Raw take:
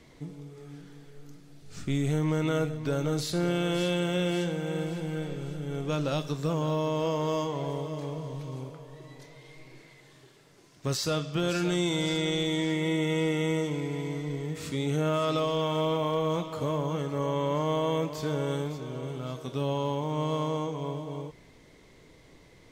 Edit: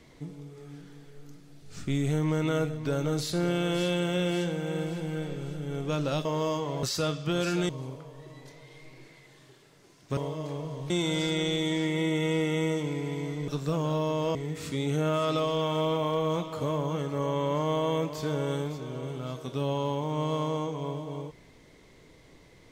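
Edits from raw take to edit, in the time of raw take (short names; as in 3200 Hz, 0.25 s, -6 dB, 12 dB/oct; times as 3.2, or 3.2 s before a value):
6.25–7.12 move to 14.35
7.7–8.43 swap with 10.91–11.77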